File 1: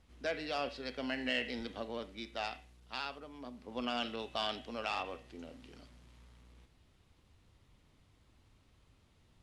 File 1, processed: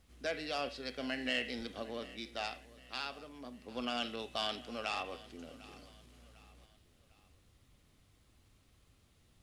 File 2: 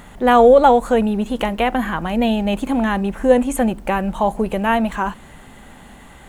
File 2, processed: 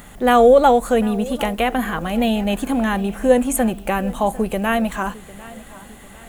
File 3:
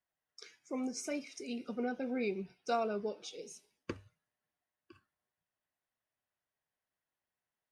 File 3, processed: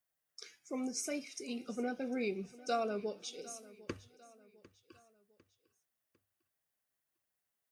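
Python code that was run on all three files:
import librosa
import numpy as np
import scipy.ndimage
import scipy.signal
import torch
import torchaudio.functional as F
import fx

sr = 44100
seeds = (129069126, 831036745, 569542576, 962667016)

y = fx.high_shelf(x, sr, hz=7500.0, db=11.5)
y = fx.notch(y, sr, hz=930.0, q=9.7)
y = fx.echo_feedback(y, sr, ms=751, feedback_pct=43, wet_db=-19.5)
y = y * librosa.db_to_amplitude(-1.0)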